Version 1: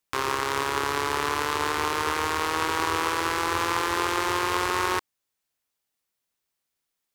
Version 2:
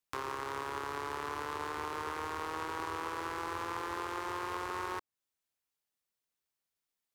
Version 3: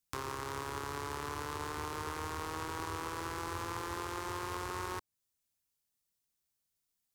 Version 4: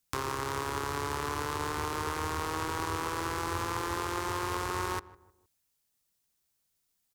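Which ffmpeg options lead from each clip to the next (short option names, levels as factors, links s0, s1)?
-filter_complex "[0:a]acrossover=split=580|1600[s0][s1][s2];[s0]acompressor=threshold=0.0158:ratio=4[s3];[s1]acompressor=threshold=0.0355:ratio=4[s4];[s2]acompressor=threshold=0.01:ratio=4[s5];[s3][s4][s5]amix=inputs=3:normalize=0,volume=0.422"
-af "bass=f=250:g=10,treble=f=4000:g=8,volume=0.75"
-filter_complex "[0:a]asplit=2[s0][s1];[s1]adelay=155,lowpass=f=1100:p=1,volume=0.126,asplit=2[s2][s3];[s3]adelay=155,lowpass=f=1100:p=1,volume=0.42,asplit=2[s4][s5];[s5]adelay=155,lowpass=f=1100:p=1,volume=0.42[s6];[s0][s2][s4][s6]amix=inputs=4:normalize=0,volume=2"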